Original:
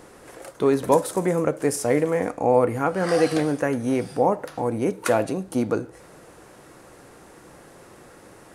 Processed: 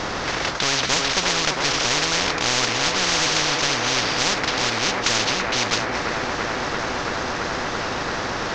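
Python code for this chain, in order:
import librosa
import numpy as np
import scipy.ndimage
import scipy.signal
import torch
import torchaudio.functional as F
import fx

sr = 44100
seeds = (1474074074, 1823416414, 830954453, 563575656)

y = fx.cvsd(x, sr, bps=32000)
y = fx.echo_wet_bandpass(y, sr, ms=336, feedback_pct=78, hz=660.0, wet_db=-3.0)
y = fx.spectral_comp(y, sr, ratio=10.0)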